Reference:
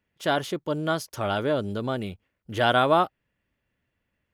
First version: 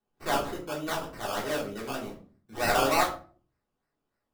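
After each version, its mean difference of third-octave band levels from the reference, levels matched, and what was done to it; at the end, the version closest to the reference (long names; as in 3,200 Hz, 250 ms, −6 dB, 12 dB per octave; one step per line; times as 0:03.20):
11.0 dB: high-pass filter 560 Hz 6 dB per octave
sample-and-hold swept by an LFO 18×, swing 60% 3.3 Hz
rectangular room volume 290 cubic metres, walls furnished, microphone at 3.5 metres
level −8.5 dB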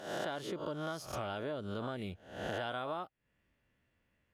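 6.0 dB: peak hold with a rise ahead of every peak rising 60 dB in 0.56 s
high-shelf EQ 12,000 Hz −9 dB
downward compressor 10 to 1, threshold −34 dBFS, peak gain reduction 19.5 dB
level −1.5 dB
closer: second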